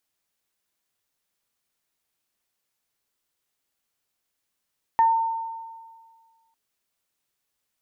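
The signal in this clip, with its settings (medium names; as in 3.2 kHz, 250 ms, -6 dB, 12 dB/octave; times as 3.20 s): additive tone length 1.55 s, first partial 907 Hz, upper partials -17 dB, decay 1.74 s, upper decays 0.24 s, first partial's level -13.5 dB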